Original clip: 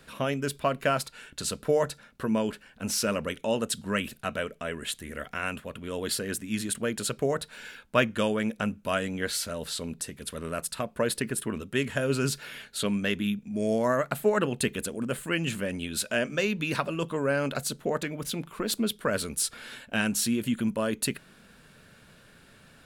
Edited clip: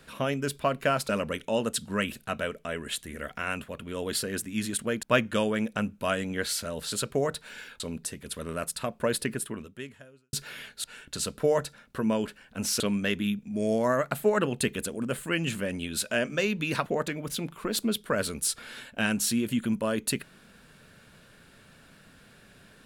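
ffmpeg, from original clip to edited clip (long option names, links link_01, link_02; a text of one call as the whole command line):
ffmpeg -i in.wav -filter_complex "[0:a]asplit=9[link_01][link_02][link_03][link_04][link_05][link_06][link_07][link_08][link_09];[link_01]atrim=end=1.092[link_10];[link_02]atrim=start=3.048:end=6.992[link_11];[link_03]atrim=start=7.868:end=9.762[link_12];[link_04]atrim=start=6.988:end=7.872[link_13];[link_05]atrim=start=9.758:end=12.29,asetpts=PTS-STARTPTS,afade=type=out:start_time=1.492:duration=1.04:curve=qua[link_14];[link_06]atrim=start=12.29:end=12.802,asetpts=PTS-STARTPTS,afade=type=in:duration=0.004:curve=hsin[link_15];[link_07]atrim=start=1.088:end=3.052[link_16];[link_08]atrim=start=12.798:end=16.862[link_17];[link_09]atrim=start=17.808[link_18];[link_10][link_11]acrossfade=duration=0.004:curve1=hsin:curve2=hsin[link_19];[link_19][link_12]acrossfade=duration=0.004:curve1=hsin:curve2=hsin[link_20];[link_20][link_13]acrossfade=duration=0.004:curve1=hsin:curve2=hsin[link_21];[link_14][link_15]concat=n=2:v=0:a=1[link_22];[link_21][link_22]acrossfade=duration=0.004:curve1=hsin:curve2=hsin[link_23];[link_23][link_16]acrossfade=duration=0.004:curve1=hsin:curve2=hsin[link_24];[link_24][link_17]acrossfade=duration=0.004:curve1=hsin:curve2=hsin[link_25];[link_25][link_18]acrossfade=duration=0.004:curve1=hsin:curve2=hsin" out.wav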